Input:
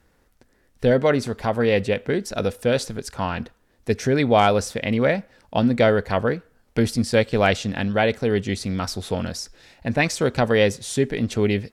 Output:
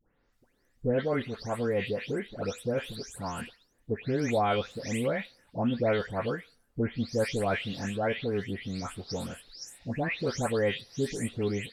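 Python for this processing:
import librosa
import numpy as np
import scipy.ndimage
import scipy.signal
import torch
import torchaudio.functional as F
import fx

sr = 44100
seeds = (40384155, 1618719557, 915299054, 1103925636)

y = fx.spec_delay(x, sr, highs='late', ms=324)
y = y * librosa.db_to_amplitude(-9.0)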